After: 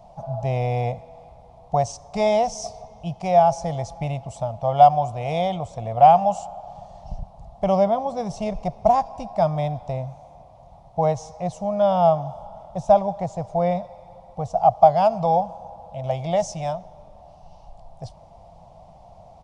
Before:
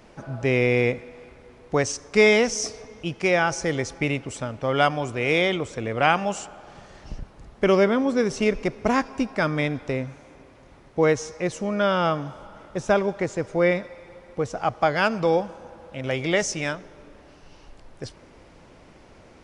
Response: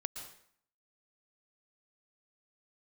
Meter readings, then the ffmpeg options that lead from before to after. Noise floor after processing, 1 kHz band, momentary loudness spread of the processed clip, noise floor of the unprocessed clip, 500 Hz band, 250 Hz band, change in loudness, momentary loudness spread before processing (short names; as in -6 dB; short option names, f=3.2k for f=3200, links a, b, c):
-48 dBFS, +8.5 dB, 21 LU, -51 dBFS, +1.5 dB, -4.0 dB, +2.0 dB, 16 LU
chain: -af "firequalizer=gain_entry='entry(180,0);entry(260,-18);entry(410,-18);entry(690,11);entry(1500,-23);entry(3500,-10)':delay=0.05:min_phase=1,volume=3dB"